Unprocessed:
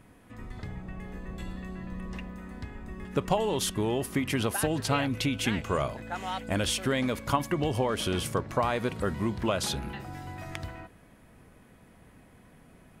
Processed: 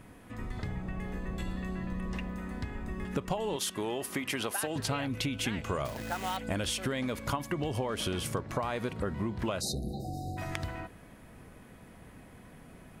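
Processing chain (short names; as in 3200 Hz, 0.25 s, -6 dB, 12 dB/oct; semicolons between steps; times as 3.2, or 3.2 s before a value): 3.56–4.76 HPF 460 Hz 6 dB/oct; 5.85–6.37 companded quantiser 4-bit; 8.93–9.39 high shelf 3200 Hz -9 dB; 9.61–10.37 spectral delete 810–3700 Hz; compressor 4:1, threshold -34 dBFS, peak gain reduction 12 dB; gain +3.5 dB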